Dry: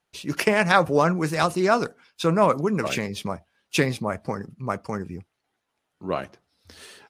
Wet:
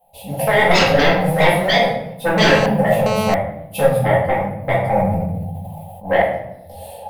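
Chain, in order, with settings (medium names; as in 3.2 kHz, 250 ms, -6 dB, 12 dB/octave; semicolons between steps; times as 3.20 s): companding laws mixed up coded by mu; FFT filter 190 Hz 0 dB, 360 Hz -26 dB, 520 Hz +11 dB, 810 Hz +14 dB, 1.3 kHz -27 dB, 3.2 kHz -10 dB, 6.2 kHz -22 dB, 11 kHz +5 dB; sine folder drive 11 dB, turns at -3 dBFS; simulated room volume 200 m³, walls mixed, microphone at 2.1 m; 2.38–3.34 s: mobile phone buzz -6 dBFS; 4.81–6.22 s: decay stretcher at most 22 dB/s; trim -14.5 dB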